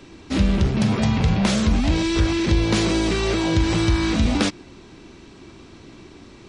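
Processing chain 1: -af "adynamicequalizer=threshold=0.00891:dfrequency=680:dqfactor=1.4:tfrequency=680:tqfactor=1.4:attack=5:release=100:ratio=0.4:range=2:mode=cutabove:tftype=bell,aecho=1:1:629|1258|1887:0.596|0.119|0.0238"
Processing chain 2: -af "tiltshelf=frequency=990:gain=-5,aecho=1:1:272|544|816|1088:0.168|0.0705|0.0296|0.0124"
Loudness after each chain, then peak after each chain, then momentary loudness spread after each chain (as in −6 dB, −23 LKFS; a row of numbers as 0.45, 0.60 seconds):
−20.0, −22.0 LKFS; −5.5, −5.0 dBFS; 10, 5 LU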